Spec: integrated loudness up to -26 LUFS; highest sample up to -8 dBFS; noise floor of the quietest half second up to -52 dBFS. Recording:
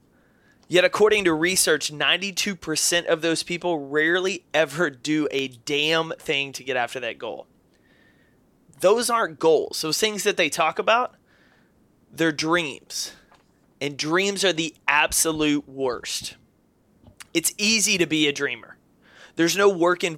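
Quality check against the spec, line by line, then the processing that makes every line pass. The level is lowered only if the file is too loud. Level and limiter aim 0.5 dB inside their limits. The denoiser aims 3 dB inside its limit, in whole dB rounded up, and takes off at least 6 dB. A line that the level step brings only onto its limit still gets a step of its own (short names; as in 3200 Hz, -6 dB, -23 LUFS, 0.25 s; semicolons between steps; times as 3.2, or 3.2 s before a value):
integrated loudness -22.0 LUFS: fail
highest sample -4.0 dBFS: fail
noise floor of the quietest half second -62 dBFS: OK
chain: gain -4.5 dB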